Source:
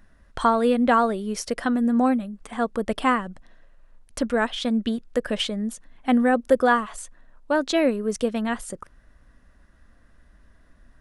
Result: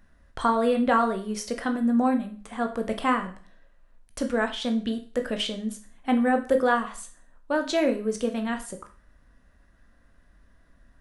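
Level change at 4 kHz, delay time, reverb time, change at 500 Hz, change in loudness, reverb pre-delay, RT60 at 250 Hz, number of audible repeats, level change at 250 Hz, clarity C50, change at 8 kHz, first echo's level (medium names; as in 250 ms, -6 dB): -2.5 dB, no echo, 0.40 s, -2.5 dB, -2.5 dB, 15 ms, 0.45 s, no echo, -2.5 dB, 12.0 dB, -3.0 dB, no echo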